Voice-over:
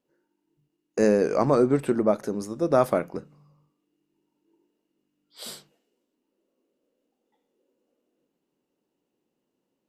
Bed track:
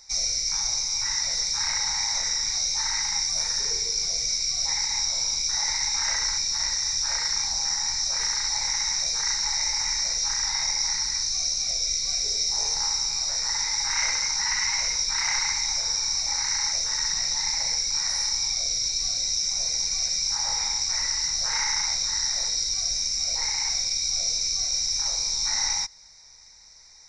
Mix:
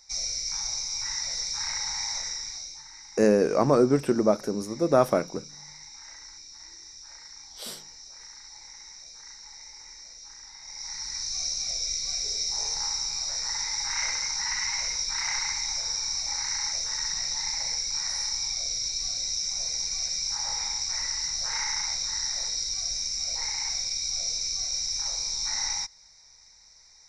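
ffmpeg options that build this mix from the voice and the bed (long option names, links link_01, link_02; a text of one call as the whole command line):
ffmpeg -i stem1.wav -i stem2.wav -filter_complex "[0:a]adelay=2200,volume=0dB[link_01];[1:a]volume=11dB,afade=type=out:start_time=2.1:duration=0.73:silence=0.177828,afade=type=in:start_time=10.62:duration=0.8:silence=0.158489[link_02];[link_01][link_02]amix=inputs=2:normalize=0" out.wav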